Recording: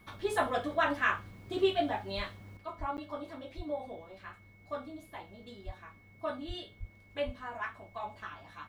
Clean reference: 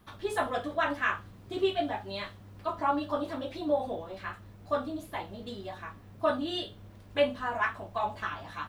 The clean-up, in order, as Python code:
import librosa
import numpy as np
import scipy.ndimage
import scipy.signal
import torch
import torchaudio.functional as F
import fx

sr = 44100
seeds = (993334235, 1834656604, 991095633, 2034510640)

y = fx.notch(x, sr, hz=2200.0, q=30.0)
y = fx.fix_deplosive(y, sr, at_s=(2.16, 2.79, 3.56, 5.65, 6.47, 6.79, 7.25))
y = fx.fix_interpolate(y, sr, at_s=(2.97,), length_ms=9.7)
y = fx.fix_level(y, sr, at_s=2.57, step_db=9.0)